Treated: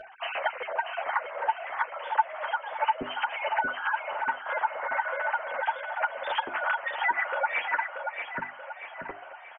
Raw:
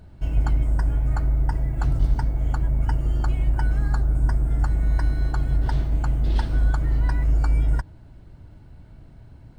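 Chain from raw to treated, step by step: formants replaced by sine waves; compression 2.5:1, threshold -32 dBFS, peak gain reduction 18 dB; chorus voices 6, 0.24 Hz, delay 10 ms, depth 2.6 ms; hum notches 50/100/150/200/250/300/350/400 Hz; on a send: feedback delay 633 ms, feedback 45%, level -6.5 dB; on the sum: trim +4 dB

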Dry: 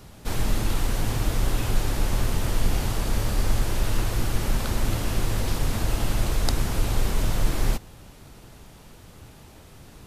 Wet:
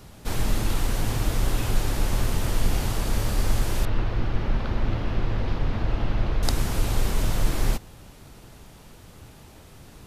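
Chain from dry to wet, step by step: 3.85–6.43 s: distance through air 280 m

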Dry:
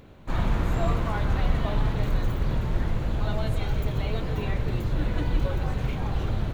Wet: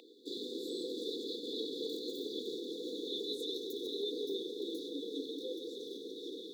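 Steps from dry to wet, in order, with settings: Doppler pass-by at 2.62 s, 27 m/s, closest 24 m; brick-wall FIR band-stop 510–3400 Hz; three-band isolator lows -14 dB, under 380 Hz, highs -18 dB, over 2.7 kHz; compression, threshold -43 dBFS, peak gain reduction 11.5 dB; Chebyshev high-pass 280 Hz, order 4; resonant high shelf 2.1 kHz +9.5 dB, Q 3; trim +13.5 dB

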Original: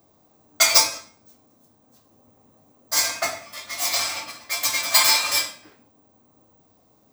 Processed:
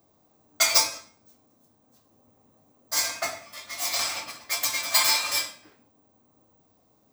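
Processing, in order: 3.99–4.65 s: harmonic-percussive split percussive +5 dB; trim -4.5 dB

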